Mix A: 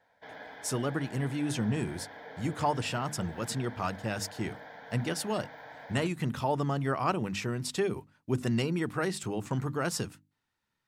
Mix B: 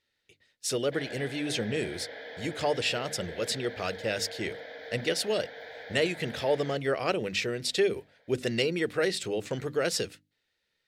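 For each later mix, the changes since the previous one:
background: entry +0.70 s; master: add graphic EQ 125/250/500/1000/2000/4000 Hz -6/-5/+12/-12/+7/+9 dB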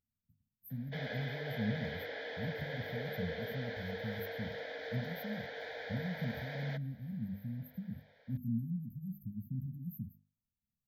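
speech: add brick-wall FIR band-stop 260–12000 Hz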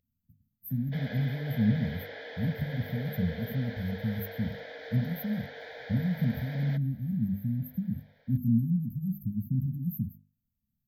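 speech +10.5 dB

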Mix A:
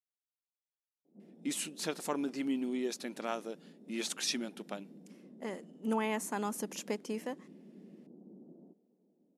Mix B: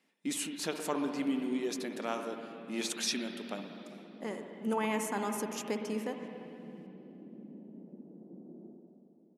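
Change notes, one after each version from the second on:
speech: entry -1.20 s; reverb: on, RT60 2.7 s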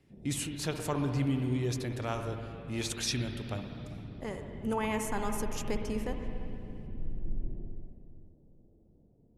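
background: entry -1.05 s; master: remove brick-wall FIR high-pass 170 Hz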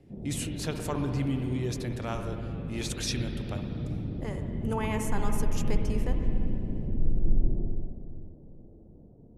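background +11.0 dB

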